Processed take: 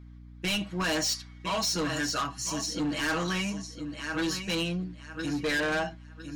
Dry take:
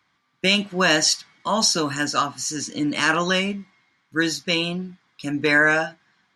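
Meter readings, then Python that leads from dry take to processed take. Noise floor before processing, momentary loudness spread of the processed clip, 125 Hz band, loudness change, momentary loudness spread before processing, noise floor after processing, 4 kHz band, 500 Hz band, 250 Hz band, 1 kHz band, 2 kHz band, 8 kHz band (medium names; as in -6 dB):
-68 dBFS, 9 LU, -4.5 dB, -9.0 dB, 12 LU, -48 dBFS, -8.5 dB, -8.5 dB, -6.0 dB, -8.5 dB, -11.0 dB, -8.0 dB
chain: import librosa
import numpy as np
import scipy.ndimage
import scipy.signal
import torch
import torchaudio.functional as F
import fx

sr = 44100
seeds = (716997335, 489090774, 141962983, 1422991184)

p1 = x + 0.93 * np.pad(x, (int(6.3 * sr / 1000.0), 0))[:len(x)]
p2 = p1 + fx.echo_feedback(p1, sr, ms=1006, feedback_pct=22, wet_db=-11.0, dry=0)
p3 = 10.0 ** (-18.0 / 20.0) * np.tanh(p2 / 10.0 ** (-18.0 / 20.0))
p4 = fx.add_hum(p3, sr, base_hz=60, snr_db=16)
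y = p4 * librosa.db_to_amplitude(-7.0)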